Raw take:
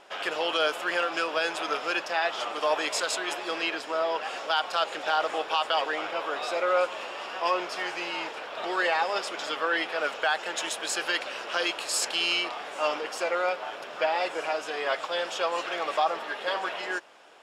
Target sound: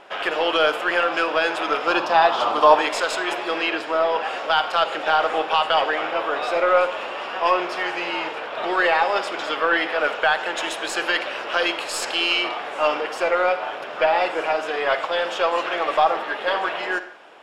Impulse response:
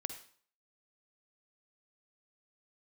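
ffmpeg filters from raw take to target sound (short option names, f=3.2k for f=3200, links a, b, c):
-filter_complex "[0:a]aeval=exprs='0.224*(cos(1*acos(clip(val(0)/0.224,-1,1)))-cos(1*PI/2))+0.00562*(cos(4*acos(clip(val(0)/0.224,-1,1)))-cos(4*PI/2))':c=same,asettb=1/sr,asplit=3[a][b][c];[a]atrim=end=1.874[d];[b]atrim=start=1.87:end=2.76,asetpts=PTS-STARTPTS,afade=t=in:d=0.004:c=qsin,afade=t=out:st=0.886:d=0.004:c=qsin,equalizer=f=125:t=o:w=1:g=7,equalizer=f=250:t=o:w=1:g=5,equalizer=f=1k:t=o:w=1:g=9,equalizer=f=2k:t=o:w=1:g=-7,equalizer=f=4k:t=o:w=1:g=5[e];[c]atrim=start=2.756[f];[d][e]acrossfade=d=0.004:c1=hsin:c2=qsin[g];[g][f]acrossfade=d=0.004:c1=qsin:c2=hsin,asplit=2[h][i];[1:a]atrim=start_sample=2205,lowpass=3.8k[j];[i][j]afir=irnorm=-1:irlink=0,volume=4dB[k];[h][k]amix=inputs=2:normalize=0"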